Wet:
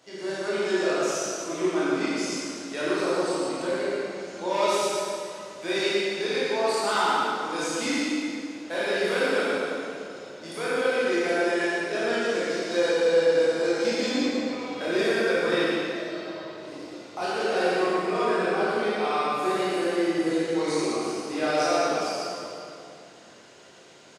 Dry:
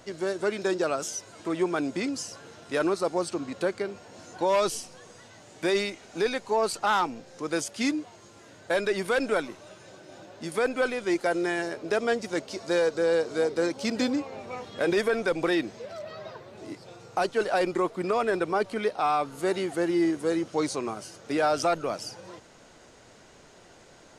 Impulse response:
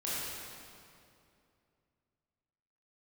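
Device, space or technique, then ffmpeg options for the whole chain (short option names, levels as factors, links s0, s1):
PA in a hall: -filter_complex "[0:a]highpass=160,equalizer=f=3700:t=o:w=2:g=5,aecho=1:1:116:0.596[s0];[1:a]atrim=start_sample=2205[s1];[s0][s1]afir=irnorm=-1:irlink=0,volume=0.531"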